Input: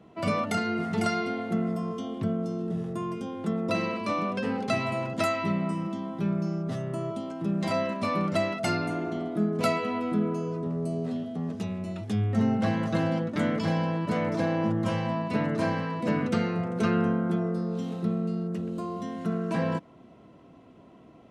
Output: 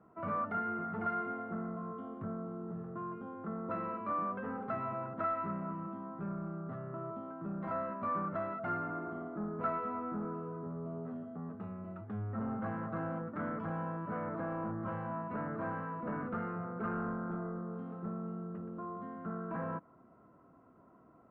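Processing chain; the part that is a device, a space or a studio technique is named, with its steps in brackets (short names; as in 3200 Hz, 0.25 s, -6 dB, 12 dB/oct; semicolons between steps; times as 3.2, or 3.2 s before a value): overdriven synthesiser ladder filter (soft clip -22 dBFS, distortion -16 dB; ladder low-pass 1500 Hz, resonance 60%)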